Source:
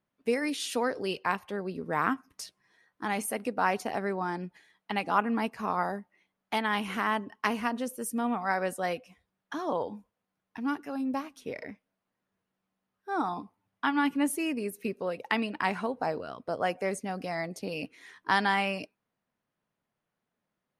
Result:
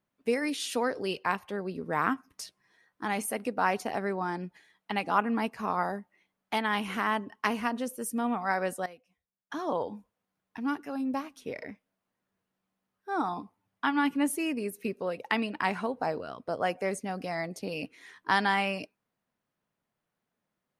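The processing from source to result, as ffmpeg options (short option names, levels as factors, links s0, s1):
-filter_complex "[0:a]asplit=3[s0][s1][s2];[s0]atrim=end=8.86,asetpts=PTS-STARTPTS,afade=t=out:st=8.72:d=0.14:c=log:silence=0.141254[s3];[s1]atrim=start=8.86:end=9.5,asetpts=PTS-STARTPTS,volume=0.141[s4];[s2]atrim=start=9.5,asetpts=PTS-STARTPTS,afade=t=in:d=0.14:c=log:silence=0.141254[s5];[s3][s4][s5]concat=n=3:v=0:a=1"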